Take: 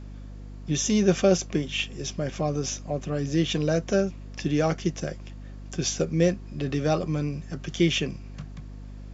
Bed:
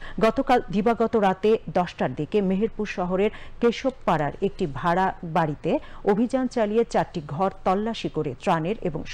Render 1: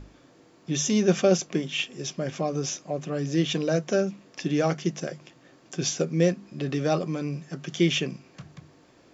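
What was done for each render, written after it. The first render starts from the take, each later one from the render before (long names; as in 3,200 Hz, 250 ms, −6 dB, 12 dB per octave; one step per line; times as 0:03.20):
mains-hum notches 50/100/150/200/250 Hz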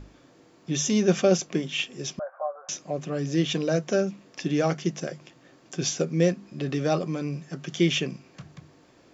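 0:02.19–0:02.69: Chebyshev band-pass filter 560–1,500 Hz, order 4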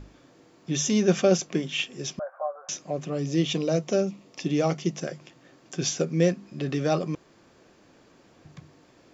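0:03.07–0:04.97: parametric band 1,600 Hz −10.5 dB 0.29 octaves
0:07.15–0:08.45: fill with room tone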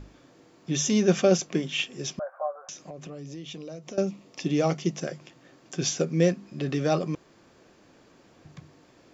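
0:02.57–0:03.98: downward compressor, threshold −37 dBFS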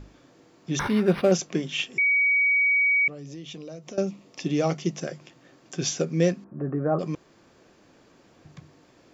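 0:00.79–0:01.32: linearly interpolated sample-rate reduction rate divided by 6×
0:01.98–0:03.08: beep over 2,260 Hz −18 dBFS
0:06.44–0:06.99: Butterworth low-pass 1,500 Hz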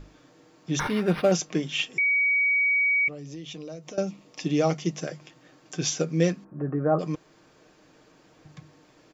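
parametric band 170 Hz −2.5 dB 2.3 octaves
comb filter 6.5 ms, depth 38%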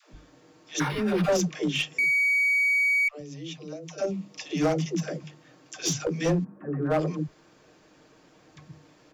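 all-pass dispersion lows, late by 139 ms, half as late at 370 Hz
asymmetric clip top −21 dBFS, bottom −16.5 dBFS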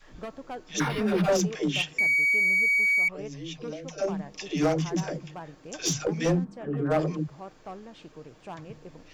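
mix in bed −19 dB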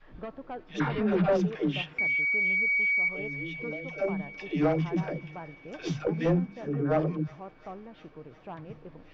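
high-frequency loss of the air 350 metres
delay with a high-pass on its return 354 ms, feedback 74%, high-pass 1,400 Hz, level −17.5 dB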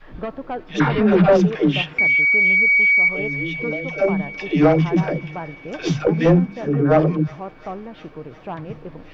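level +11 dB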